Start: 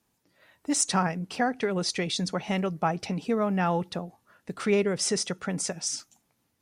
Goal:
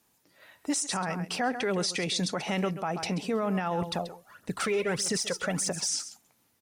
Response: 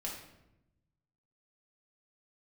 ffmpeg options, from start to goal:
-filter_complex "[0:a]lowshelf=frequency=280:gain=-6.5,aecho=1:1:133:0.158,asettb=1/sr,asplit=3[link_01][link_02][link_03];[link_01]atrim=end=3.824[link_04];[link_02]atrim=start=3.82:end=5.88,asetpts=PTS-STARTPTS,afade=type=in:duration=0.004:curve=qsin,afade=type=out:start_time=2.056:duration=0.004:curve=qsin,aphaser=in_gain=1:out_gain=1:delay=2.4:decay=0.63:speed=1.6:type=triangular[link_05];[link_03]atrim=start=5.876[link_06];[link_04][link_05]acrossfade=duration=0.004:curve1=hsin:curve2=qsin[link_07];[link_07][link_06]acrossfade=duration=0.004:curve1=qsin:curve2=hsin,highshelf=frequency=9000:gain=5,acompressor=threshold=-26dB:ratio=2.5,alimiter=level_in=1dB:limit=-24dB:level=0:latency=1:release=15,volume=-1dB,volume=4.5dB"

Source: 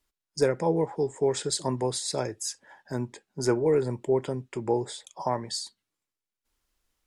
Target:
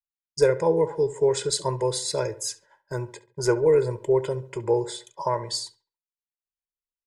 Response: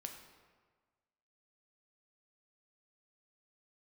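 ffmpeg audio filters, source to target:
-filter_complex "[0:a]agate=range=-33dB:threshold=-43dB:ratio=3:detection=peak,aecho=1:1:2:0.89,asplit=2[link_01][link_02];[link_02]adelay=69,lowpass=frequency=2400:poles=1,volume=-15.5dB,asplit=2[link_03][link_04];[link_04]adelay=69,lowpass=frequency=2400:poles=1,volume=0.43,asplit=2[link_05][link_06];[link_06]adelay=69,lowpass=frequency=2400:poles=1,volume=0.43,asplit=2[link_07][link_08];[link_08]adelay=69,lowpass=frequency=2400:poles=1,volume=0.43[link_09];[link_01][link_03][link_05][link_07][link_09]amix=inputs=5:normalize=0"

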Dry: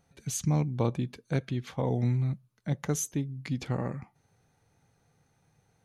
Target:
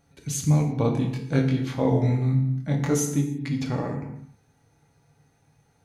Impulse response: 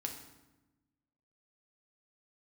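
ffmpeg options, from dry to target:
-filter_complex "[0:a]asettb=1/sr,asplit=3[link_01][link_02][link_03];[link_01]atrim=end=0.934[link_04];[link_02]atrim=start=0.93:end=2.99,asetpts=PTS-STARTPTS,afade=type=in:duration=0.004:curve=qsin,afade=type=out:start_time=2.056:duration=0.004:curve=qsin,asplit=2[link_05][link_06];[link_06]adelay=23,volume=-2dB[link_07];[link_05][link_07]amix=inputs=2:normalize=0,atrim=end_sample=90846[link_08];[link_03]atrim=start=2.986[link_09];[link_04][link_08]acrossfade=duration=0.004:curve1=hsin:curve2=qsin[link_10];[link_10][link_09]acrossfade=duration=0.004:curve1=qsin:curve2=hsin[link_11];[1:a]atrim=start_sample=2205,afade=type=out:start_time=0.38:duration=0.01,atrim=end_sample=17199[link_12];[link_11][link_12]afir=irnorm=-1:irlink=0,volume=5dB"

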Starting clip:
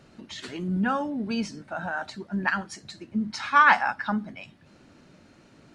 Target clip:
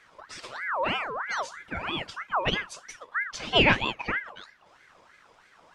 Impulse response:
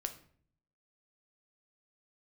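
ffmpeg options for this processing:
-filter_complex "[0:a]asettb=1/sr,asplit=3[link_01][link_02][link_03];[link_01]atrim=end=1.584[link_04];[link_02]atrim=start=1.58:end=3,asetpts=PTS-STARTPTS,afade=type=in:duration=0.004:curve=qsin,afade=type=out:start_time=1.416:duration=0.004:curve=qsin,aecho=1:1:4.7:0.74,atrim=end_sample=62622[link_05];[link_03]atrim=start=2.996[link_06];[link_04][link_05]acrossfade=duration=0.004:curve1=hsin:curve2=qsin[link_07];[link_07][link_06]acrossfade=duration=0.004:curve1=qsin:curve2=hsin,aeval=exprs='val(0)*sin(2*PI*1300*n/s+1300*0.45/3.1*sin(2*PI*3.1*n/s))':channel_layout=same"

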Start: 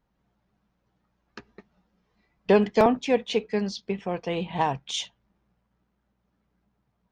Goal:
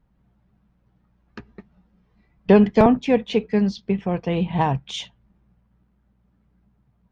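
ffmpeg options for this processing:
ffmpeg -i in.wav -af "bass=frequency=250:gain=10,treble=frequency=4000:gain=-8,volume=2.5dB" out.wav

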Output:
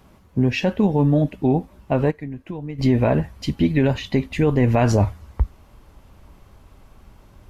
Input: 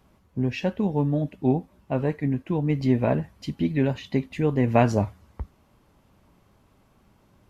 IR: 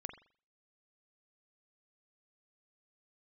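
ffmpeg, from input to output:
-filter_complex "[0:a]asubboost=boost=4:cutoff=75,asplit=3[link_01][link_02][link_03];[link_01]afade=type=out:start_time=2.1:duration=0.02[link_04];[link_02]acompressor=threshold=-37dB:ratio=8,afade=type=in:start_time=2.1:duration=0.02,afade=type=out:start_time=2.78:duration=0.02[link_05];[link_03]afade=type=in:start_time=2.78:duration=0.02[link_06];[link_04][link_05][link_06]amix=inputs=3:normalize=0,alimiter=level_in=16.5dB:limit=-1dB:release=50:level=0:latency=1,volume=-8dB"

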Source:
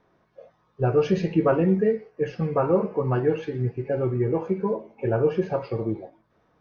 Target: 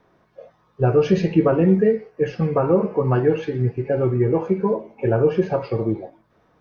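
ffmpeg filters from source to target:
ffmpeg -i in.wav -filter_complex "[0:a]acrossover=split=450[link_01][link_02];[link_02]acompressor=threshold=-24dB:ratio=6[link_03];[link_01][link_03]amix=inputs=2:normalize=0,volume=5dB" out.wav

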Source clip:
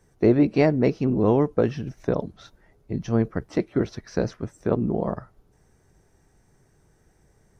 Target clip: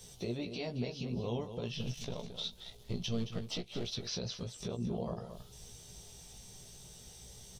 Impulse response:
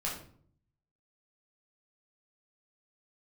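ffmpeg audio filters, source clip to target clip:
-filter_complex "[0:a]asettb=1/sr,asplit=3[link_01][link_02][link_03];[link_01]atrim=end=1.724[link_04];[link_02]atrim=start=1.72:end=3.95,asetpts=PTS-STARTPTS,afade=type=in:duration=0.004:curve=qsin,afade=type=out:start_time=2.226:duration=0.004:curve=qsin,aeval=exprs='if(lt(val(0),0),0.447*val(0),val(0))':channel_layout=same[link_05];[link_03]atrim=start=3.946[link_06];[link_04][link_05]acrossfade=duration=0.004:curve1=hsin:curve2=qsin[link_07];[link_07][link_06]acrossfade=duration=0.004:curve1=qsin:curve2=hsin,equalizer=frequency=310:width_type=o:width=0.3:gain=-14,acompressor=threshold=-39dB:ratio=3,highshelf=frequency=2400:width_type=q:width=3:gain=12,acrossover=split=4800[link_08][link_09];[link_09]acompressor=threshold=-55dB:ratio=4:attack=1:release=60[link_10];[link_08][link_10]amix=inputs=2:normalize=0,alimiter=level_in=9dB:limit=-24dB:level=0:latency=1:release=187,volume=-9dB,asplit=2[link_11][link_12];[link_12]adelay=17,volume=-5dB[link_13];[link_11][link_13]amix=inputs=2:normalize=0,asplit=2[link_14][link_15];[link_15]adelay=221.6,volume=-9dB,highshelf=frequency=4000:gain=-4.99[link_16];[link_14][link_16]amix=inputs=2:normalize=0,volume=4dB"

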